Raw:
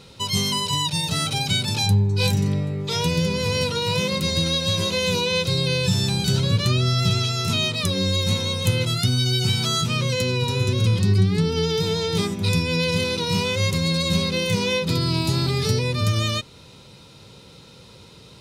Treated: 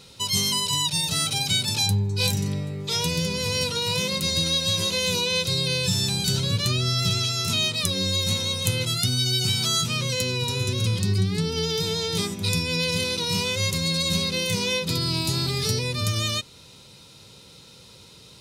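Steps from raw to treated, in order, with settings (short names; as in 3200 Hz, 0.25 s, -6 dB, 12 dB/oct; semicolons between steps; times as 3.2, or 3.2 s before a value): high shelf 3500 Hz +10 dB; gain -5 dB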